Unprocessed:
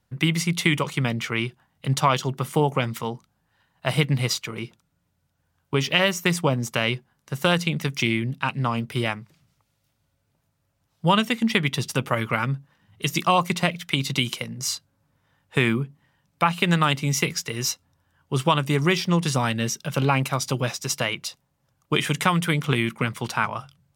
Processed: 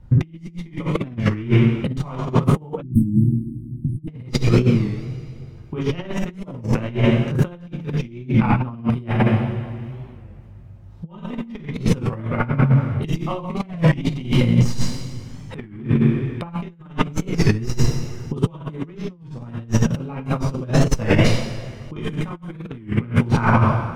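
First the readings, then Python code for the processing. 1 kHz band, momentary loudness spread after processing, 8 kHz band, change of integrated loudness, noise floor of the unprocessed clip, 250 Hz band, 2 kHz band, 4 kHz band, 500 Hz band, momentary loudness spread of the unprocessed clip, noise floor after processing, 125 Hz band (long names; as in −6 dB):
−3.0 dB, 16 LU, −7.5 dB, +2.5 dB, −72 dBFS, +5.5 dB, −4.5 dB, −8.0 dB, +1.5 dB, 9 LU, −42 dBFS, +7.0 dB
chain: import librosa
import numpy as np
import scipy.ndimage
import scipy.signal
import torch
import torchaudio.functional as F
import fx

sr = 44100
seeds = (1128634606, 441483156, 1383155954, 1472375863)

y = fx.tracing_dist(x, sr, depth_ms=0.03)
y = fx.tilt_eq(y, sr, slope=-4.5)
y = fx.rev_double_slope(y, sr, seeds[0], early_s=0.85, late_s=2.5, knee_db=-18, drr_db=-3.5)
y = fx.over_compress(y, sr, threshold_db=-20.0, ratio=-0.5)
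y = fx.spec_erase(y, sr, start_s=2.83, length_s=1.25, low_hz=350.0, high_hz=8300.0)
y = fx.record_warp(y, sr, rpm=33.33, depth_cents=160.0)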